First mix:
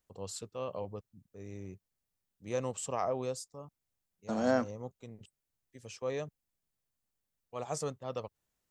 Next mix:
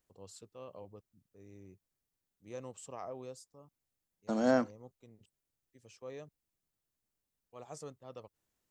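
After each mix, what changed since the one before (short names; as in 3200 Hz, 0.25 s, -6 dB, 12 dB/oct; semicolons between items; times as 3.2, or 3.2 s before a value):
first voice -11.0 dB; master: add bell 320 Hz +4 dB 0.59 oct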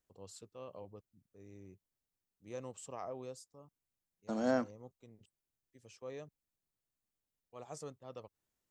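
second voice -4.0 dB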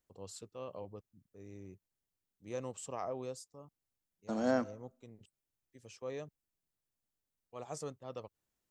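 first voice +4.0 dB; reverb: on, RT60 0.55 s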